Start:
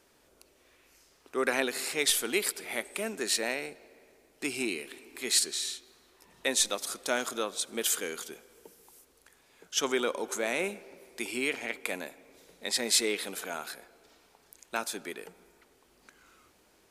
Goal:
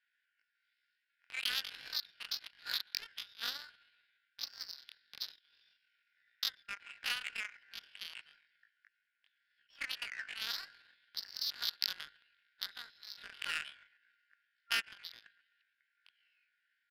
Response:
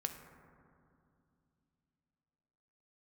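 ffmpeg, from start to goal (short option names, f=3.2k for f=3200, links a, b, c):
-filter_complex "[0:a]asplit=7[a][b][c][d][e][f][g];[b]adelay=127,afreqshift=-140,volume=-17.5dB[h];[c]adelay=254,afreqshift=-280,volume=-21.7dB[i];[d]adelay=381,afreqshift=-420,volume=-25.8dB[j];[e]adelay=508,afreqshift=-560,volume=-30dB[k];[f]adelay=635,afreqshift=-700,volume=-34.1dB[l];[g]adelay=762,afreqshift=-840,volume=-38.3dB[m];[a][h][i][j][k][l][m]amix=inputs=7:normalize=0,acompressor=threshold=-31dB:ratio=6,afftfilt=real='re*between(b*sr/4096,690,2800)':imag='im*between(b*sr/4096,690,2800)':win_size=4096:overlap=0.75,asetrate=88200,aresample=44100,atempo=0.5,adynamicsmooth=sensitivity=8:basefreq=970,volume=5.5dB"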